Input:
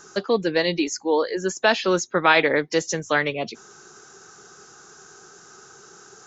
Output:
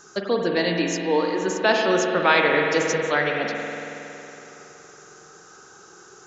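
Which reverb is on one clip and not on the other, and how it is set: spring tank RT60 3.2 s, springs 46 ms, chirp 70 ms, DRR 0.5 dB; gain -2 dB

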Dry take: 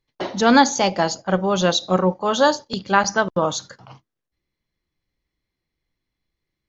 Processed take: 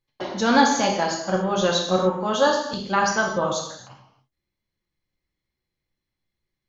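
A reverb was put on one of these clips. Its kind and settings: non-linear reverb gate 0.31 s falling, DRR 0 dB; gain -5.5 dB

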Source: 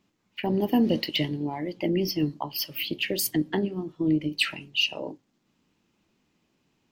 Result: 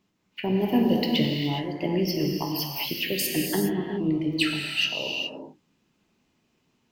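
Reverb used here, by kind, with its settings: non-linear reverb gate 0.44 s flat, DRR 0 dB; gain -1.5 dB

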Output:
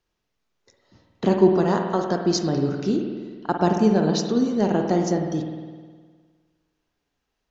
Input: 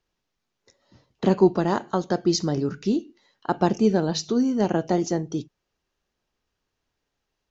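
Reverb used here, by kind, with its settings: spring tank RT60 1.6 s, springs 51 ms, chirp 55 ms, DRR 3 dB

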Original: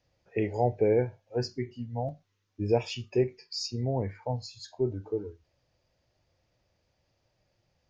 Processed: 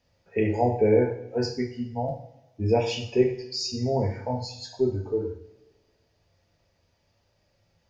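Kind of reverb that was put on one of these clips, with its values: two-slope reverb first 0.57 s, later 1.5 s, DRR 0 dB; gain +2 dB

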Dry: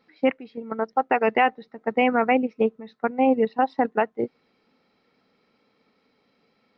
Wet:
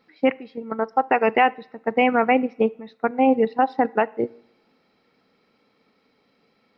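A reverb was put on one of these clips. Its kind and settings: two-slope reverb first 0.64 s, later 2.7 s, from -28 dB, DRR 19.5 dB; gain +2 dB

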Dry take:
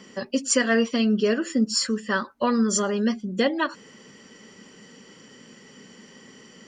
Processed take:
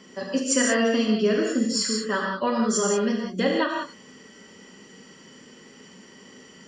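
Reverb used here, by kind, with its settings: non-linear reverb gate 0.21 s flat, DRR -1 dB; gain -3 dB

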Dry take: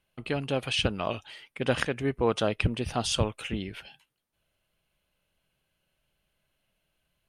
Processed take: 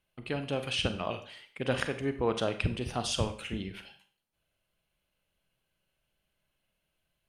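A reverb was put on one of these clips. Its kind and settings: Schroeder reverb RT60 0.45 s, combs from 32 ms, DRR 8.5 dB; gain -4 dB

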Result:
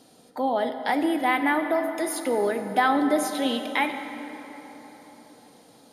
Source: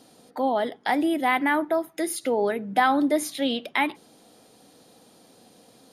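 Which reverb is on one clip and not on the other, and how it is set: plate-style reverb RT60 4.2 s, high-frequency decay 0.55×, DRR 6.5 dB; gain -1 dB

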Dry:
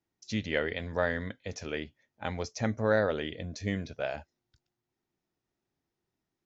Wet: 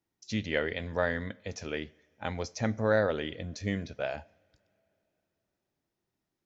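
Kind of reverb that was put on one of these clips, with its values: two-slope reverb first 0.54 s, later 3.4 s, from -19 dB, DRR 19.5 dB

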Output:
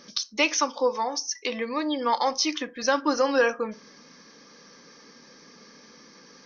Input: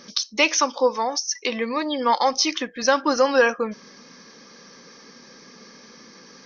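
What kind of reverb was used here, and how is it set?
FDN reverb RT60 0.31 s, low-frequency decay 1.05×, high-frequency decay 0.5×, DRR 12.5 dB; gain -4.5 dB

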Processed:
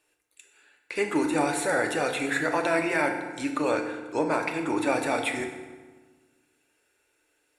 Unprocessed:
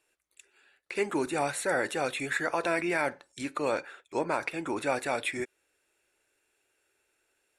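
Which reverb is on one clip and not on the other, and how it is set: FDN reverb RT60 1.4 s, low-frequency decay 1.3×, high-frequency decay 0.7×, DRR 3.5 dB; gain +2 dB

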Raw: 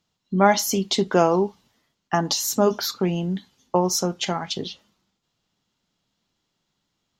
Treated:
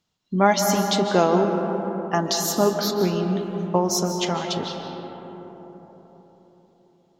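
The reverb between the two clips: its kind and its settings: digital reverb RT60 4.4 s, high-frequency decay 0.3×, pre-delay 0.11 s, DRR 4 dB; gain -1 dB

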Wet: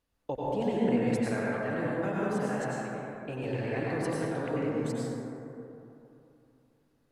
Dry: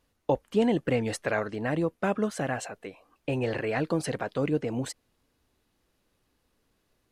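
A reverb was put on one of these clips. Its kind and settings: plate-style reverb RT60 3 s, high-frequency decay 0.3×, pre-delay 80 ms, DRR -6.5 dB; gain -10 dB

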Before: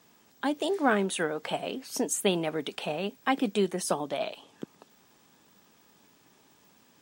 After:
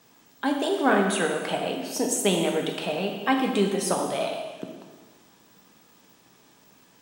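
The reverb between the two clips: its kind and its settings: plate-style reverb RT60 1.4 s, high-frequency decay 0.9×, DRR 1.5 dB; gain +2 dB

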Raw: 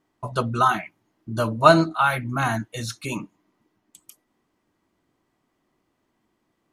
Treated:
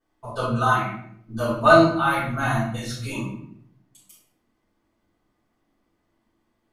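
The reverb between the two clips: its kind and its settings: shoebox room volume 130 m³, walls mixed, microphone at 4.9 m; gain -15 dB

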